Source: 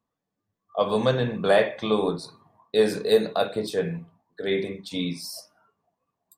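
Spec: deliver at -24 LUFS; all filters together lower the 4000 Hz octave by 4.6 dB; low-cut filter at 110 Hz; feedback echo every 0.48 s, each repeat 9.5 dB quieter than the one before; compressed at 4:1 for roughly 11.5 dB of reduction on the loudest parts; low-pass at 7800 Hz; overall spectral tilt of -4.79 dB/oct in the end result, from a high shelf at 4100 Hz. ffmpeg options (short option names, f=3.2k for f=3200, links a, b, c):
-af "highpass=110,lowpass=7.8k,equalizer=f=4k:t=o:g=-3,highshelf=f=4.1k:g=-4,acompressor=threshold=-28dB:ratio=4,aecho=1:1:480|960|1440|1920:0.335|0.111|0.0365|0.012,volume=9dB"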